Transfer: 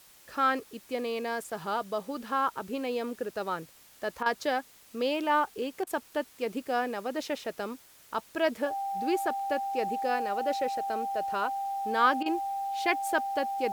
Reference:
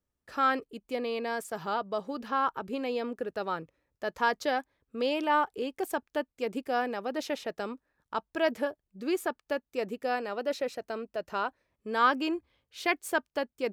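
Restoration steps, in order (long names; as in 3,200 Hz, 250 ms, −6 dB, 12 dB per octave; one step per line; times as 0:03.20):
notch filter 790 Hz, Q 30
repair the gap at 0:04.23/0:05.84/0:12.23, 28 ms
noise reduction from a noise print 26 dB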